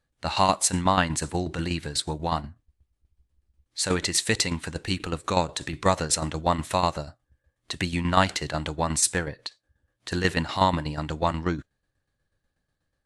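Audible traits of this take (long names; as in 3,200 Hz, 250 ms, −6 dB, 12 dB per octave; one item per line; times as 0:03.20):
tremolo saw down 8.2 Hz, depth 65%
AAC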